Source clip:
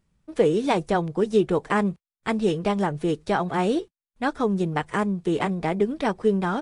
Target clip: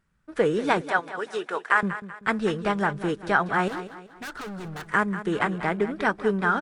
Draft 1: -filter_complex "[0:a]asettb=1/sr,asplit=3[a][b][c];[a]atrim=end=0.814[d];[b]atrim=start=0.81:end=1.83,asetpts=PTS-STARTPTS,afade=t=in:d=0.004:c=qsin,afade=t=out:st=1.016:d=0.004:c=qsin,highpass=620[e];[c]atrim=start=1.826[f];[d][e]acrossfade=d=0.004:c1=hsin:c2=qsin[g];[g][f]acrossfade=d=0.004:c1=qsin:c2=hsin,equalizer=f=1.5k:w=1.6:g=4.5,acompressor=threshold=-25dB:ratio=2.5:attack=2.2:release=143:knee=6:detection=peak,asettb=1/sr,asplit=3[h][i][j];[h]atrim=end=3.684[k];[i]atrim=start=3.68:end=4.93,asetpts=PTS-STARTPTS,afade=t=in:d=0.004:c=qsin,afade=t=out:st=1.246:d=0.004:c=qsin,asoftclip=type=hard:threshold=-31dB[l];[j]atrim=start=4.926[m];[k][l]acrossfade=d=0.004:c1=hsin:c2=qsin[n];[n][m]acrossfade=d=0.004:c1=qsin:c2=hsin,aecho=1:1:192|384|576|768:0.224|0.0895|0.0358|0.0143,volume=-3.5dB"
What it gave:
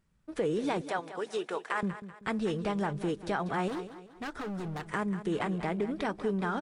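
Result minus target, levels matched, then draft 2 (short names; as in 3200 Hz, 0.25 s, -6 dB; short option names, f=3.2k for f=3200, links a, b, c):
compressor: peak gain reduction +9.5 dB; 2000 Hz band -5.0 dB
-filter_complex "[0:a]asettb=1/sr,asplit=3[a][b][c];[a]atrim=end=0.814[d];[b]atrim=start=0.81:end=1.83,asetpts=PTS-STARTPTS,afade=t=in:d=0.004:c=qsin,afade=t=out:st=1.016:d=0.004:c=qsin,highpass=620[e];[c]atrim=start=1.826[f];[d][e]acrossfade=d=0.004:c1=hsin:c2=qsin[g];[g][f]acrossfade=d=0.004:c1=qsin:c2=hsin,equalizer=f=1.5k:w=1.6:g=13.5,asettb=1/sr,asplit=3[h][i][j];[h]atrim=end=3.684[k];[i]atrim=start=3.68:end=4.93,asetpts=PTS-STARTPTS,afade=t=in:d=0.004:c=qsin,afade=t=out:st=1.246:d=0.004:c=qsin,asoftclip=type=hard:threshold=-31dB[l];[j]atrim=start=4.926[m];[k][l]acrossfade=d=0.004:c1=hsin:c2=qsin[n];[n][m]acrossfade=d=0.004:c1=qsin:c2=hsin,aecho=1:1:192|384|576|768:0.224|0.0895|0.0358|0.0143,volume=-3.5dB"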